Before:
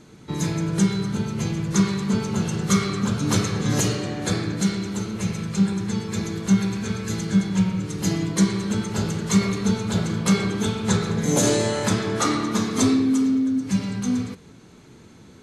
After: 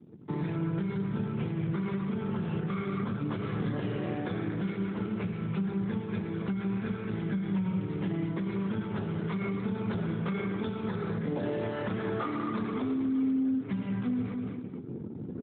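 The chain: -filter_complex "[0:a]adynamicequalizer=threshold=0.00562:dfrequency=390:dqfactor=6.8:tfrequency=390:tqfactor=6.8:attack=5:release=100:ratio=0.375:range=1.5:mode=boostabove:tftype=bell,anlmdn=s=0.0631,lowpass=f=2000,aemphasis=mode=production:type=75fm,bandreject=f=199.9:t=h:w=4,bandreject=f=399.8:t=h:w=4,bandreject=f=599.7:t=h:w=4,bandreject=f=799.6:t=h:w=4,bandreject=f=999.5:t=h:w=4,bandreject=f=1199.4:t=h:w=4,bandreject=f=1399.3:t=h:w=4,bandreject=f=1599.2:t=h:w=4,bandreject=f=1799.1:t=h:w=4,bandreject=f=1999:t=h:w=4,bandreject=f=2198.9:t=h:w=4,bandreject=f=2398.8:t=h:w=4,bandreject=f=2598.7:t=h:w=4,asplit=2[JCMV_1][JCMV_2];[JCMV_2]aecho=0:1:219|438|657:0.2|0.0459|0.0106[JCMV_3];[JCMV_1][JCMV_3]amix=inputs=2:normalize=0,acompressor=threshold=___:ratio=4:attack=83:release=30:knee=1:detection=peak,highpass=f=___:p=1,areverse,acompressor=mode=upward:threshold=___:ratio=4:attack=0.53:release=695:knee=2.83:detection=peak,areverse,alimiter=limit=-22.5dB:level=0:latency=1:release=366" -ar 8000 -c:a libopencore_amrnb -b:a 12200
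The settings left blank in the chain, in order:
-28dB, 85, -26dB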